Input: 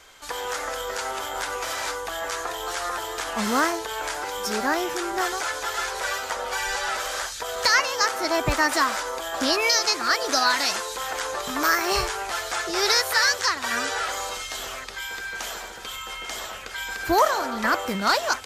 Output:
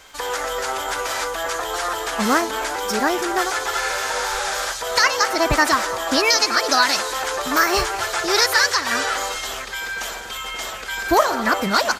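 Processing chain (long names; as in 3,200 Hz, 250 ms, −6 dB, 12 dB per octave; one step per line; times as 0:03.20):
surface crackle 27 per second −42 dBFS
on a send: echo with shifted repeats 318 ms, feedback 55%, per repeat +32 Hz, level −19 dB
on the sum: phase-vocoder stretch with locked phases 0.65×
far-end echo of a speakerphone 270 ms, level −18 dB
healed spectral selection 0:03.85–0:04.64, 970–12,000 Hz
level +5.5 dB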